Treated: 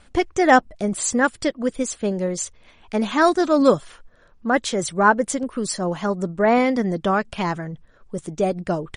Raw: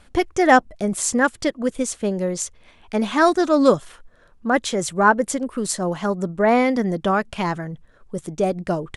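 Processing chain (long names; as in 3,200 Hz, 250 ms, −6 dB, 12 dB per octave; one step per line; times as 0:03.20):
MP3 40 kbit/s 44,100 Hz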